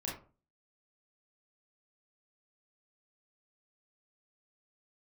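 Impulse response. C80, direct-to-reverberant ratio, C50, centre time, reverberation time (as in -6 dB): 11.5 dB, -4.5 dB, 5.0 dB, 36 ms, 0.40 s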